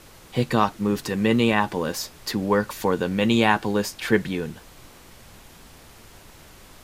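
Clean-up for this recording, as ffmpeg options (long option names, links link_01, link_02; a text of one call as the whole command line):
ffmpeg -i in.wav -af "afftdn=noise_reduction=20:noise_floor=-48" out.wav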